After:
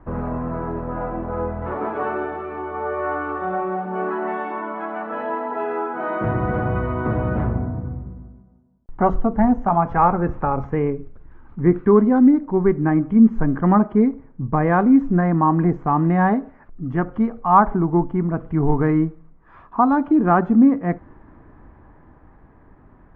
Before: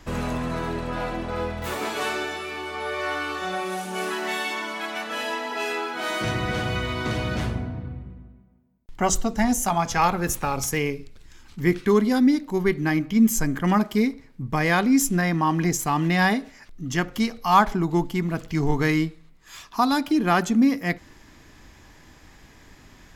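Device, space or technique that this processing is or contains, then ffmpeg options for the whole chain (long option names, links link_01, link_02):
action camera in a waterproof case: -af "lowpass=frequency=1300:width=0.5412,lowpass=frequency=1300:width=1.3066,highshelf=frequency=6000:gain=7,dynaudnorm=framelen=150:gausssize=21:maxgain=3.5dB,volume=2dB" -ar 32000 -c:a aac -b:a 48k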